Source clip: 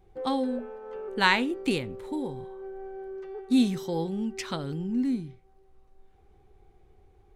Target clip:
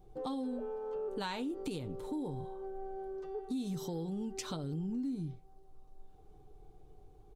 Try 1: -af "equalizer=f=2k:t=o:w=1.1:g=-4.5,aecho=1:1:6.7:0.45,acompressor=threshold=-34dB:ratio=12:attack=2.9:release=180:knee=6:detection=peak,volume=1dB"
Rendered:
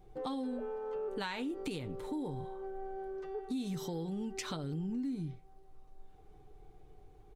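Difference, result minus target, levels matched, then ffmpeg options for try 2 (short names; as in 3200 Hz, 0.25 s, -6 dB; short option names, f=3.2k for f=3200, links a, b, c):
2000 Hz band +3.5 dB
-af "equalizer=f=2k:t=o:w=1.1:g=-13,aecho=1:1:6.7:0.45,acompressor=threshold=-34dB:ratio=12:attack=2.9:release=180:knee=6:detection=peak,volume=1dB"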